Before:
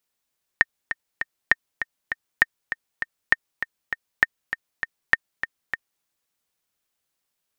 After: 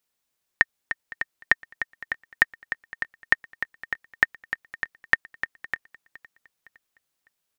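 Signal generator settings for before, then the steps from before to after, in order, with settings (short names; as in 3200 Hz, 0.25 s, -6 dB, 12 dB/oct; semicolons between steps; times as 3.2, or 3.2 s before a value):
metronome 199 bpm, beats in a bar 3, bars 6, 1830 Hz, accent 10.5 dB -1.5 dBFS
feedback echo 0.511 s, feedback 46%, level -21.5 dB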